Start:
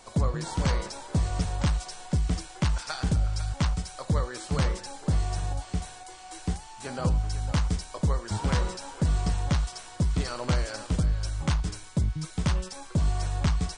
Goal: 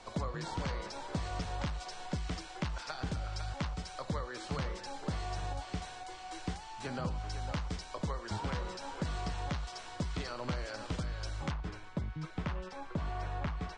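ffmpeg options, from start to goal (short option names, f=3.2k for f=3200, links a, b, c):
-filter_complex "[0:a]asetnsamples=n=441:p=0,asendcmd='11.51 lowpass f 2300',lowpass=4.8k,acrossover=split=260|800[a][b][c];[a]acompressor=threshold=-38dB:ratio=4[d];[b]acompressor=threshold=-44dB:ratio=4[e];[c]acompressor=threshold=-42dB:ratio=4[f];[d][e][f]amix=inputs=3:normalize=0"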